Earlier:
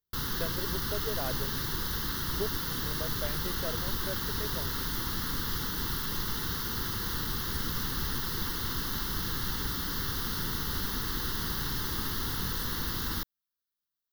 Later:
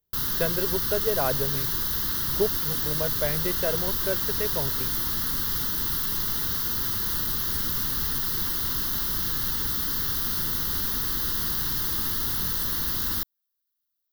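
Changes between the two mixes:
speech +10.5 dB; master: add treble shelf 6.2 kHz +10 dB

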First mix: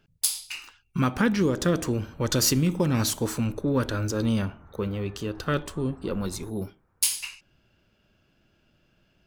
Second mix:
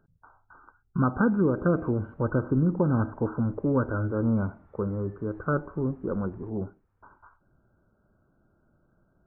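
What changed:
speech: add brick-wall FIR low-pass 1.6 kHz; background -8.0 dB

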